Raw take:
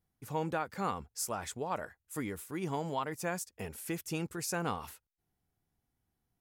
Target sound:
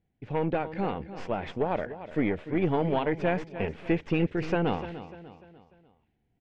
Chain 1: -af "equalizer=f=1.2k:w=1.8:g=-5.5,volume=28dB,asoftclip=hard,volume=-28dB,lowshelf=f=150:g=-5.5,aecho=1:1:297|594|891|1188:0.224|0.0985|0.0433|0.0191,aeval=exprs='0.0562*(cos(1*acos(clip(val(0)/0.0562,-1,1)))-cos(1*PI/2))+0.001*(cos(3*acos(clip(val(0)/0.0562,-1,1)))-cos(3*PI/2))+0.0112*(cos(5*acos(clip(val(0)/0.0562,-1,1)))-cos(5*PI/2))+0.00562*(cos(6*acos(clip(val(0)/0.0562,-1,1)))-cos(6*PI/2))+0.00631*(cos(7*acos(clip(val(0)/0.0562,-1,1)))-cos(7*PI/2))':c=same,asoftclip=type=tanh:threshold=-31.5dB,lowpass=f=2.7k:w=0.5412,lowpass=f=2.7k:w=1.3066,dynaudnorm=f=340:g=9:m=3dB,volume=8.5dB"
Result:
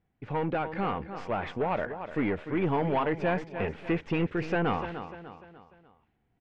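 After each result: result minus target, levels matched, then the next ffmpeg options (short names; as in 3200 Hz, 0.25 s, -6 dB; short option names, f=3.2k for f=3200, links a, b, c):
soft clip: distortion +18 dB; 1000 Hz band +2.5 dB
-af "equalizer=f=1.2k:w=1.8:g=-5.5,volume=28dB,asoftclip=hard,volume=-28dB,lowshelf=f=150:g=-5.5,aecho=1:1:297|594|891|1188:0.224|0.0985|0.0433|0.0191,aeval=exprs='0.0562*(cos(1*acos(clip(val(0)/0.0562,-1,1)))-cos(1*PI/2))+0.001*(cos(3*acos(clip(val(0)/0.0562,-1,1)))-cos(3*PI/2))+0.0112*(cos(5*acos(clip(val(0)/0.0562,-1,1)))-cos(5*PI/2))+0.00562*(cos(6*acos(clip(val(0)/0.0562,-1,1)))-cos(6*PI/2))+0.00631*(cos(7*acos(clip(val(0)/0.0562,-1,1)))-cos(7*PI/2))':c=same,asoftclip=type=tanh:threshold=-20.5dB,lowpass=f=2.7k:w=0.5412,lowpass=f=2.7k:w=1.3066,dynaudnorm=f=340:g=9:m=3dB,volume=8.5dB"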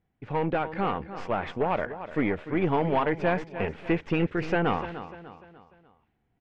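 1000 Hz band +2.5 dB
-af "equalizer=f=1.2k:w=1.8:g=-17.5,volume=28dB,asoftclip=hard,volume=-28dB,lowshelf=f=150:g=-5.5,aecho=1:1:297|594|891|1188:0.224|0.0985|0.0433|0.0191,aeval=exprs='0.0562*(cos(1*acos(clip(val(0)/0.0562,-1,1)))-cos(1*PI/2))+0.001*(cos(3*acos(clip(val(0)/0.0562,-1,1)))-cos(3*PI/2))+0.0112*(cos(5*acos(clip(val(0)/0.0562,-1,1)))-cos(5*PI/2))+0.00562*(cos(6*acos(clip(val(0)/0.0562,-1,1)))-cos(6*PI/2))+0.00631*(cos(7*acos(clip(val(0)/0.0562,-1,1)))-cos(7*PI/2))':c=same,asoftclip=type=tanh:threshold=-20.5dB,lowpass=f=2.7k:w=0.5412,lowpass=f=2.7k:w=1.3066,dynaudnorm=f=340:g=9:m=3dB,volume=8.5dB"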